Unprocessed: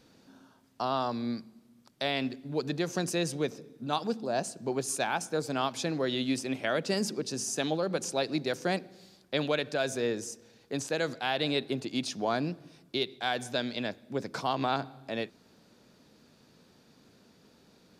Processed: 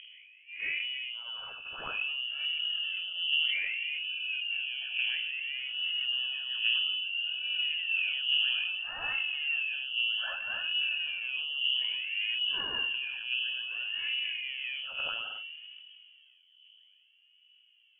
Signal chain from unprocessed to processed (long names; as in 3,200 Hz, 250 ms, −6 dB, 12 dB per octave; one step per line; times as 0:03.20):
peak hold with a rise ahead of every peak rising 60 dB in 2.56 s
noise reduction from a noise print of the clip's start 22 dB
low-pass that shuts in the quiet parts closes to 370 Hz, open at −24.5 dBFS
hum removal 77.65 Hz, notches 7
noise gate −34 dBFS, range −16 dB
treble cut that deepens with the level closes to 380 Hz, closed at −24.5 dBFS
low-shelf EQ 340 Hz −6.5 dB
upward compression, threshold −35 dBFS
phase shifter 0.6 Hz, delay 3.9 ms, feedback 65%
flutter between parallel walls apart 8 metres, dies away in 0.22 s
voice inversion scrambler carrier 3,200 Hz
level that may fall only so fast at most 23 dB per second
level −2 dB